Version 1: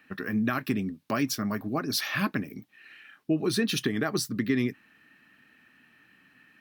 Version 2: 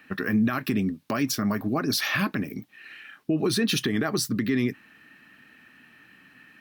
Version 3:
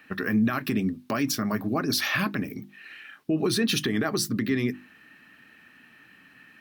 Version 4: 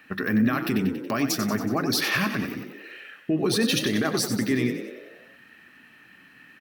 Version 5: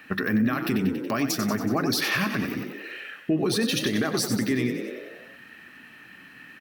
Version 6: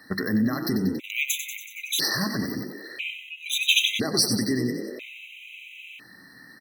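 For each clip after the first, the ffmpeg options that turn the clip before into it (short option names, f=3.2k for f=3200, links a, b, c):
-af "alimiter=limit=-21.5dB:level=0:latency=1:release=60,volume=6dB"
-af "bandreject=f=50:t=h:w=6,bandreject=f=100:t=h:w=6,bandreject=f=150:t=h:w=6,bandreject=f=200:t=h:w=6,bandreject=f=250:t=h:w=6,bandreject=f=300:t=h:w=6,bandreject=f=350:t=h:w=6"
-filter_complex "[0:a]asplit=8[a][b][c][d][e][f][g][h];[b]adelay=93,afreqshift=43,volume=-9.5dB[i];[c]adelay=186,afreqshift=86,volume=-14.1dB[j];[d]adelay=279,afreqshift=129,volume=-18.7dB[k];[e]adelay=372,afreqshift=172,volume=-23.2dB[l];[f]adelay=465,afreqshift=215,volume=-27.8dB[m];[g]adelay=558,afreqshift=258,volume=-32.4dB[n];[h]adelay=651,afreqshift=301,volume=-37dB[o];[a][i][j][k][l][m][n][o]amix=inputs=8:normalize=0,volume=1dB"
-af "alimiter=limit=-19.5dB:level=0:latency=1:release=272,volume=4.5dB"
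-af "highshelf=f=2k:t=q:w=3:g=7,afftfilt=real='re*gt(sin(2*PI*0.5*pts/sr)*(1-2*mod(floor(b*sr/1024/2000),2)),0)':imag='im*gt(sin(2*PI*0.5*pts/sr)*(1-2*mod(floor(b*sr/1024/2000),2)),0)':win_size=1024:overlap=0.75"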